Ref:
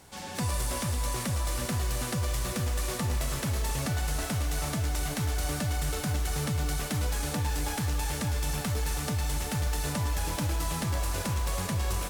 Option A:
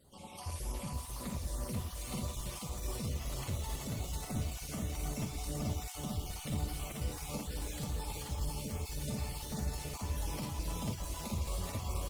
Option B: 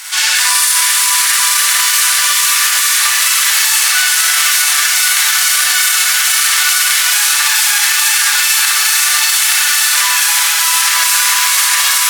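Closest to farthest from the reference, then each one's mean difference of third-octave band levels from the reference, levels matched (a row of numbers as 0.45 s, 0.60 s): A, B; 4.0 dB, 17.5 dB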